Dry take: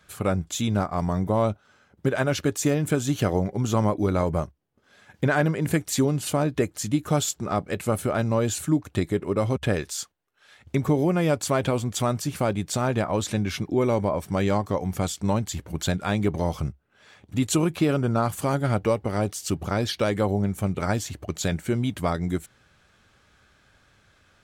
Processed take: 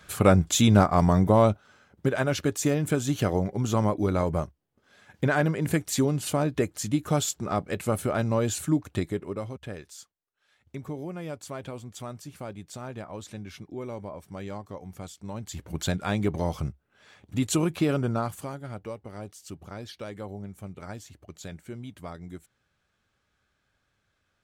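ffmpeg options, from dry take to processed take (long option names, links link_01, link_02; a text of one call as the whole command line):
ffmpeg -i in.wav -af "volume=17.5dB,afade=type=out:start_time=0.81:duration=1.33:silence=0.398107,afade=type=out:start_time=8.84:duration=0.7:silence=0.251189,afade=type=in:start_time=15.33:duration=0.4:silence=0.266073,afade=type=out:start_time=18.01:duration=0.55:silence=0.251189" out.wav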